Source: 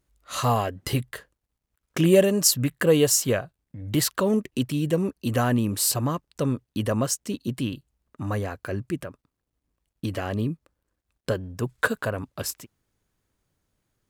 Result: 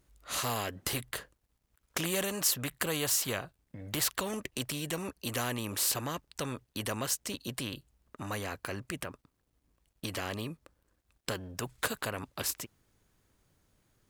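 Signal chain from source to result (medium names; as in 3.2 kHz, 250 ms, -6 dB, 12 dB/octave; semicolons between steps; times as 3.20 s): spectrum-flattening compressor 2:1; trim -6.5 dB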